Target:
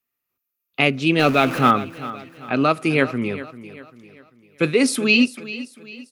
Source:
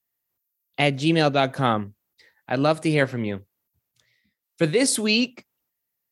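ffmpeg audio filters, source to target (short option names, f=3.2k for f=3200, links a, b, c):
-filter_complex "[0:a]asettb=1/sr,asplit=3[a][b][c];[a]atrim=end=1.194[d];[b]atrim=start=1.19:end=1.71,asetpts=PTS-STARTPTS,afade=t=in:d=0.004:c=qsin,afade=t=out:st=0.516:d=0.004:c=qsin,aeval=exprs='val(0)+0.5*0.0501*sgn(val(0))':c=same[e];[c]atrim=start=1.706[f];[d][e]acrossfade=d=0.004:c1=hsin:c2=qsin[g];[g][f]acrossfade=d=0.004:c1=qsin:c2=hsin,equalizer=f=250:t=o:w=0.33:g=9,equalizer=f=400:t=o:w=0.33:g=6,equalizer=f=1.25k:t=o:w=0.33:g=11,equalizer=f=2.5k:t=o:w=0.33:g=11,equalizer=f=8k:t=o:w=0.33:g=-4,asplit=2[h][i];[i]aecho=0:1:394|788|1182|1576:0.168|0.0705|0.0296|0.0124[j];[h][j]amix=inputs=2:normalize=0,volume=-1.5dB"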